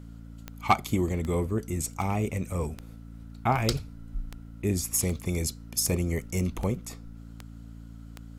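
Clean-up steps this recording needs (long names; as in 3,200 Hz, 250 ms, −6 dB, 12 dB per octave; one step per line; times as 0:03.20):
clipped peaks rebuilt −11.5 dBFS
click removal
hum removal 56.4 Hz, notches 5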